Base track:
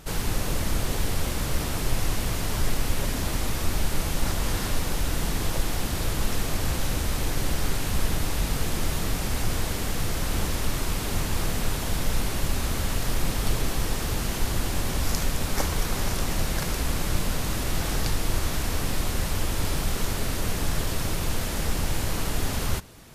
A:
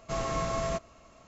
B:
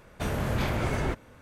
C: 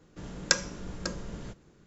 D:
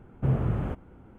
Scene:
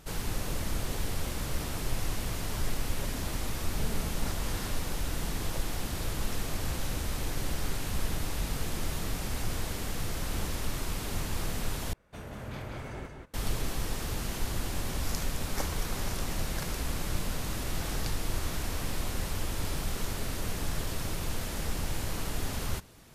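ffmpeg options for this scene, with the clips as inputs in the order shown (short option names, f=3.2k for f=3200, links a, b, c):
-filter_complex "[2:a]asplit=2[a][b];[0:a]volume=-6.5dB[c];[4:a]aecho=1:1:4.5:0.65[d];[a]aecho=1:1:181:0.596[e];[b]aeval=exprs='abs(val(0))':c=same[f];[c]asplit=2[g][h];[g]atrim=end=11.934[i];[e]atrim=end=1.41,asetpts=PTS-STARTPTS,volume=-13dB[j];[h]atrim=start=13.336[k];[d]atrim=end=1.18,asetpts=PTS-STARTPTS,volume=-12dB,afade=t=in:d=0.004:c=hsin,afade=t=out:st=1.176:d=0.004:c=hsin,adelay=3550[l];[f]atrim=end=1.41,asetpts=PTS-STARTPTS,volume=-18dB,afade=t=in:d=0.004:c=hsin,afade=t=out:st=1.406:d=0.004:c=hsin,adelay=18190[m];[i][j]acrossfade=d=0.004:c1=hsin:c2=hsin[n];[n][k]acrossfade=d=0.004:c1=hsin:c2=hsin[o];[o][l][m]amix=inputs=3:normalize=0"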